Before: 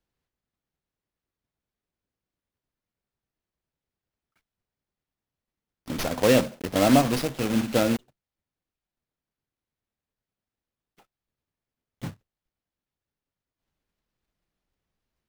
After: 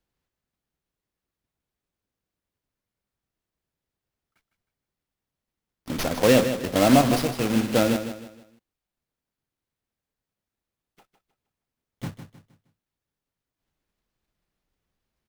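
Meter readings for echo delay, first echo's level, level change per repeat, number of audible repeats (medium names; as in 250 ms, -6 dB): 156 ms, -10.0 dB, -9.0 dB, 3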